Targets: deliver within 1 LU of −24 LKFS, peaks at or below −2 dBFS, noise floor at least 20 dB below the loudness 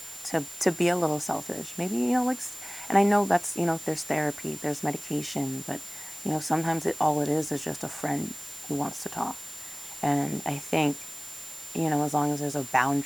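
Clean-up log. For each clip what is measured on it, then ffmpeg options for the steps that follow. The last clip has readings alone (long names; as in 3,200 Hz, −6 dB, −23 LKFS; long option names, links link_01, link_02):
interfering tone 7,200 Hz; level of the tone −41 dBFS; background noise floor −41 dBFS; target noise floor −48 dBFS; integrated loudness −28.0 LKFS; sample peak −7.0 dBFS; target loudness −24.0 LKFS
→ -af "bandreject=frequency=7200:width=30"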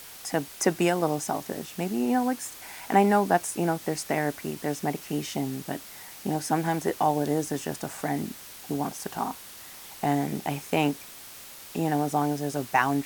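interfering tone none found; background noise floor −45 dBFS; target noise floor −48 dBFS
→ -af "afftdn=noise_reduction=6:noise_floor=-45"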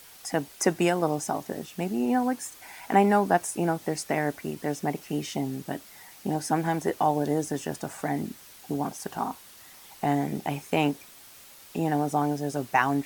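background noise floor −50 dBFS; integrated loudness −28.0 LKFS; sample peak −7.0 dBFS; target loudness −24.0 LKFS
→ -af "volume=4dB"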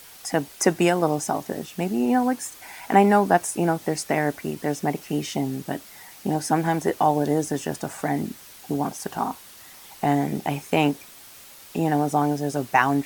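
integrated loudness −24.0 LKFS; sample peak −3.0 dBFS; background noise floor −46 dBFS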